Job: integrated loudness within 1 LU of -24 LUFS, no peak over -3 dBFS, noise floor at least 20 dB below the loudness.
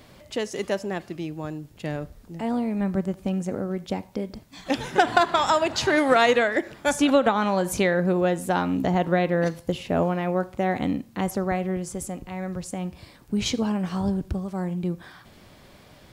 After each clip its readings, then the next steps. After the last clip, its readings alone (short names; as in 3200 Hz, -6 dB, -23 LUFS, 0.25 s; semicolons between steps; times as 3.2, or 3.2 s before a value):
loudness -25.0 LUFS; peak -4.5 dBFS; loudness target -24.0 LUFS
-> gain +1 dB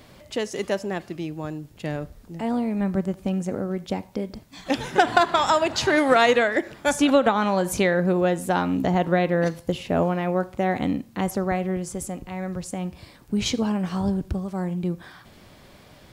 loudness -24.0 LUFS; peak -3.5 dBFS; noise floor -50 dBFS